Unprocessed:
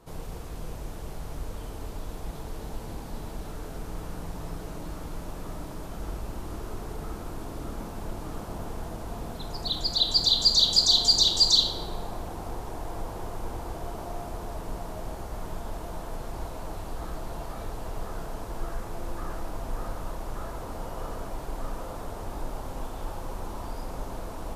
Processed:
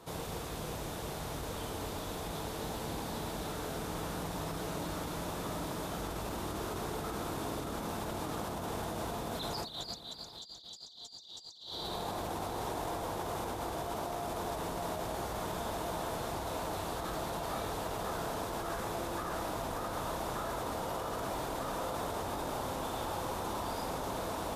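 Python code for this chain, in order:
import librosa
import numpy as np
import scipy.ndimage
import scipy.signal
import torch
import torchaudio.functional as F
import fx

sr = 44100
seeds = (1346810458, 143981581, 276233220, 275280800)

y = scipy.signal.sosfilt(scipy.signal.butter(2, 75.0, 'highpass', fs=sr, output='sos'), x)
y = fx.peak_eq(y, sr, hz=3600.0, db=5.5, octaves=0.21)
y = fx.over_compress(y, sr, threshold_db=-39.0, ratio=-1.0)
y = fx.low_shelf(y, sr, hz=360.0, db=-5.5)
y = y + 10.0 ** (-15.5 / 20.0) * np.pad(y, (int(754 * sr / 1000.0), 0))[:len(y)]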